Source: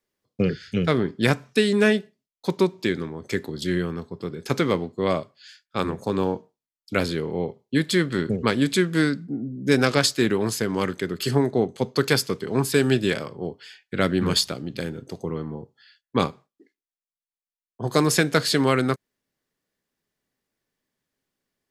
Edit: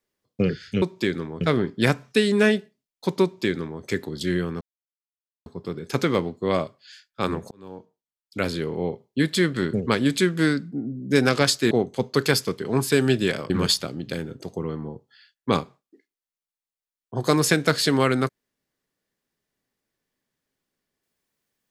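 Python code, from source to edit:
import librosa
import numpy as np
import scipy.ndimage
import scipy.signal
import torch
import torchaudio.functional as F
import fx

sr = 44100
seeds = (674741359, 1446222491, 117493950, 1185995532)

y = fx.edit(x, sr, fx.duplicate(start_s=2.64, length_s=0.59, to_s=0.82),
    fx.insert_silence(at_s=4.02, length_s=0.85),
    fx.fade_in_span(start_s=6.07, length_s=1.22),
    fx.cut(start_s=10.27, length_s=1.26),
    fx.cut(start_s=13.32, length_s=0.85), tone=tone)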